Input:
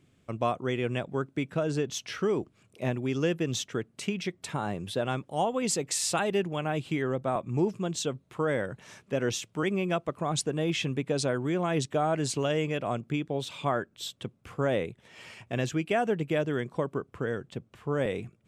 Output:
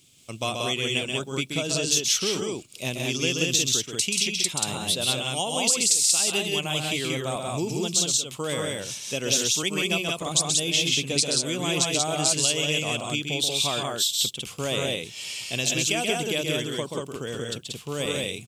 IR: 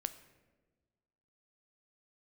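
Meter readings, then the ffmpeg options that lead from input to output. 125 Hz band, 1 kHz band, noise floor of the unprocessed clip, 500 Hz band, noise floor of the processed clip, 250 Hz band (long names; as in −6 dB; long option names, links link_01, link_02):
0.0 dB, −0.5 dB, −66 dBFS, −0.5 dB, −43 dBFS, −0.5 dB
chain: -af "aexciter=amount=11.1:drive=3.7:freq=2600,acompressor=threshold=-18dB:ratio=6,aecho=1:1:131.2|183.7:0.562|0.794,volume=-2.5dB"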